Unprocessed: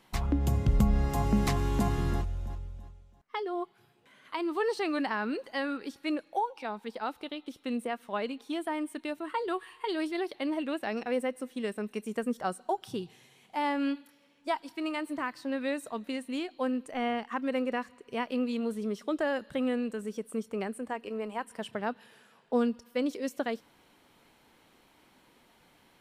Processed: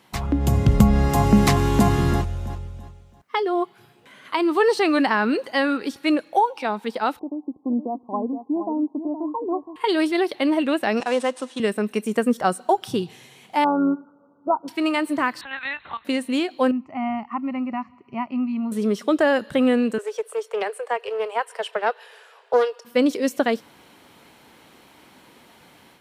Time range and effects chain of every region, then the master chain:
7.19–9.76 s: rippled Chebyshev low-pass 1.1 kHz, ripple 9 dB + delay 468 ms -9.5 dB
11.00–11.60 s: CVSD coder 64 kbps + cabinet simulation 330–9000 Hz, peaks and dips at 450 Hz -5 dB, 1 kHz +5 dB, 2.1 kHz -5 dB, 3.5 kHz +4 dB
13.64–14.68 s: brick-wall FIR low-pass 1.5 kHz + AM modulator 100 Hz, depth 20%
15.41–16.05 s: high-pass 950 Hz 24 dB/octave + LPC vocoder at 8 kHz pitch kept + three bands compressed up and down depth 40%
16.71–18.72 s: high-pass 63 Hz + tape spacing loss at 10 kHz 43 dB + static phaser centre 2.4 kHz, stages 8
19.98–22.85 s: steep high-pass 400 Hz 72 dB/octave + treble shelf 8.7 kHz -9 dB + loudspeaker Doppler distortion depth 0.14 ms
whole clip: high-pass 67 Hz; level rider gain up to 5.5 dB; trim +6 dB

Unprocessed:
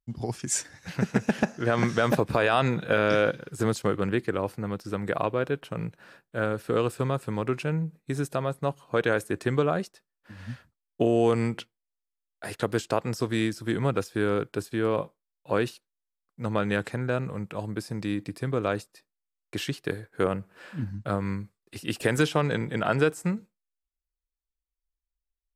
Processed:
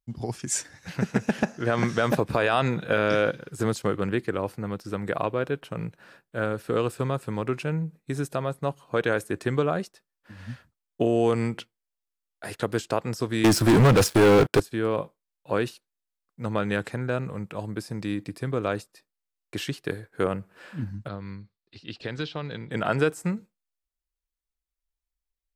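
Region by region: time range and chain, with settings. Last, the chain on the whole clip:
13.44–14.60 s: high-pass 44 Hz 24 dB/octave + waveshaping leveller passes 5
21.08–22.71 s: four-pole ladder low-pass 4.7 kHz, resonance 60% + bass shelf 170 Hz +5.5 dB
whole clip: none

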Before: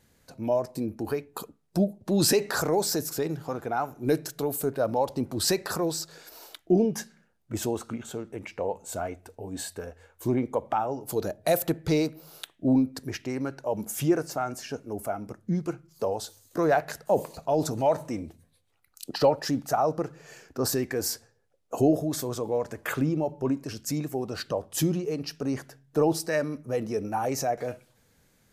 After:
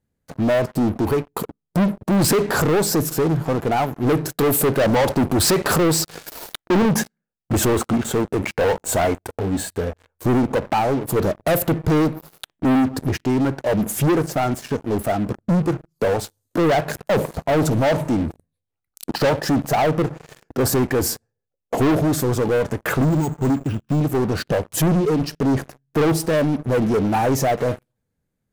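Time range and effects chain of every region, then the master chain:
4.36–9.41 s: bass shelf 350 Hz -5 dB + waveshaping leveller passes 2
23.02–24.01 s: careless resampling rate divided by 6×, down filtered, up hold + static phaser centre 2.9 kHz, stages 8
whole clip: FFT filter 170 Hz 0 dB, 5.8 kHz -14 dB, 8.5 kHz -10 dB; waveshaping leveller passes 5

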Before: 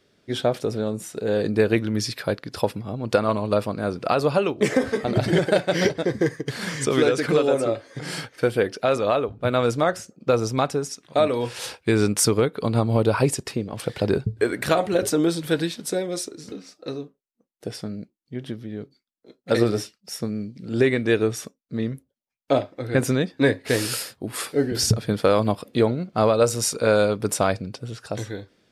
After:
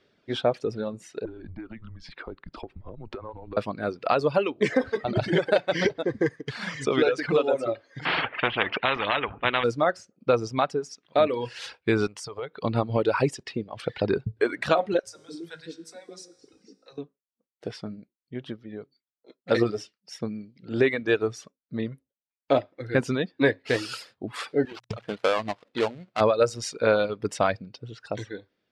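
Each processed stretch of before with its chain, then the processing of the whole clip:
1.25–3.57 s: low-pass 1.3 kHz 6 dB/octave + compression 16:1, threshold -29 dBFS + frequency shift -120 Hz
8.05–9.64 s: Chebyshev low-pass 2.8 kHz, order 4 + peaking EQ 1.1 kHz +7.5 dB 2.2 oct + spectrum-flattening compressor 4:1
12.07–12.64 s: compression 2.5:1, threshold -28 dBFS + peaking EQ 240 Hz -7.5 dB 0.75 oct
14.99–16.98 s: resonant high shelf 4.5 kHz +6.5 dB, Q 1.5 + feedback comb 54 Hz, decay 1.7 s, mix 80% + three bands offset in time highs, lows, mids 40/160 ms, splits 160/510 Hz
24.65–26.21 s: dead-time distortion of 0.2 ms + bass shelf 300 Hz -11 dB + hum notches 60/120 Hz
whole clip: low-pass 4 kHz 12 dB/octave; bass shelf 280 Hz -5.5 dB; reverb removal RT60 1.5 s

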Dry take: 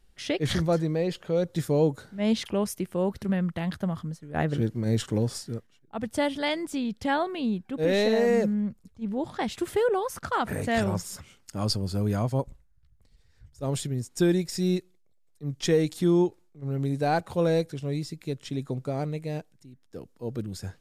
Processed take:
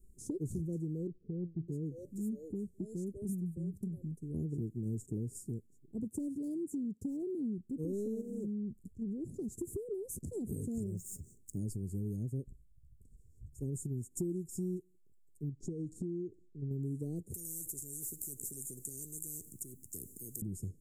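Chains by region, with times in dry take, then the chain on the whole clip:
1.07–4.18 s: bands offset in time lows, highs 610 ms, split 480 Hz + flange 1 Hz, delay 3.4 ms, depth 3 ms, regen +84%
6.00–7.58 s: high-pass 180 Hz 6 dB/octave + tilt shelf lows +3.5 dB, about 840 Hz + hard clipper -19 dBFS
8.21–10.30 s: compression 4:1, threshold -29 dBFS + loudspeaker Doppler distortion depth 0.31 ms
10.86–11.57 s: median filter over 3 samples + peaking EQ 260 Hz -4 dB 2.3 oct
15.49–16.71 s: low-pass 5 kHz + compression 4:1, threshold -31 dBFS
17.34–20.42 s: tone controls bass +12 dB, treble +15 dB + compression 1.5:1, threshold -30 dBFS + spectrum-flattening compressor 10:1
whole clip: Chebyshev band-stop 400–7300 Hz, order 4; compression 4:1, threshold -39 dBFS; trim +2 dB

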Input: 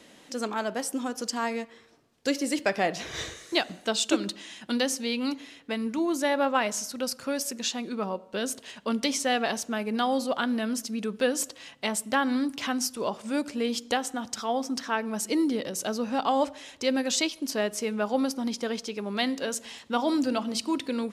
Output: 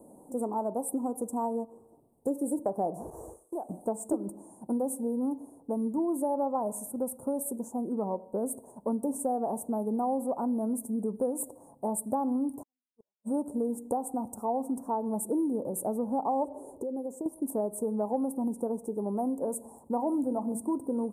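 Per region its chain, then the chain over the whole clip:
3.10–3.69 s: compression 2:1, threshold -33 dBFS + expander -41 dBFS + peaking EQ 130 Hz -12 dB 2.1 oct
12.61–13.30 s: inverted gate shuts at -25 dBFS, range -35 dB + upward expansion 2.5:1, over -57 dBFS
16.45–17.26 s: peaking EQ 410 Hz +12.5 dB 0.82 oct + compression 12:1, threshold -33 dBFS
whole clip: Chebyshev band-stop 910–8900 Hz, order 4; dynamic bell 1.2 kHz, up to +4 dB, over -43 dBFS, Q 1.6; compression 3:1, threshold -31 dBFS; trim +3 dB

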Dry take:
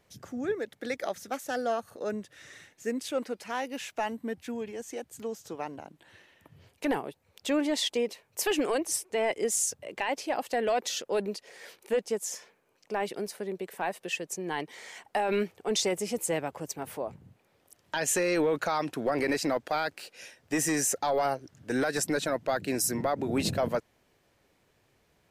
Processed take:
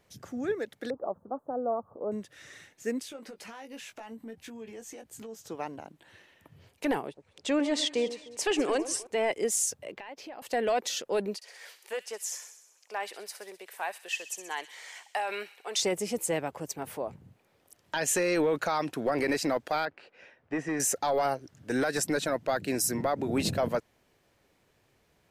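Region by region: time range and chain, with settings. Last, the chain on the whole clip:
0.90–2.12 s: zero-crossing glitches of -37 dBFS + elliptic low-pass 1.1 kHz, stop band 50 dB
3.03–5.41 s: transient shaper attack -4 dB, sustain 0 dB + compression, threshold -41 dBFS + doubling 18 ms -7.5 dB
7.07–9.07 s: low-pass 9 kHz 24 dB/octave + echo whose repeats swap between lows and highs 101 ms, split 1.1 kHz, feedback 61%, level -12 dB
9.91–10.42 s: peaking EQ 9.2 kHz -14 dB 0.99 oct + compression 5:1, threshold -41 dBFS
11.35–15.82 s: high-pass 750 Hz + feedback echo behind a high-pass 64 ms, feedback 65%, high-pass 2.9 kHz, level -10 dB
19.85–20.80 s: low-pass 1.8 kHz + bass shelf 460 Hz -4 dB
whole clip: none

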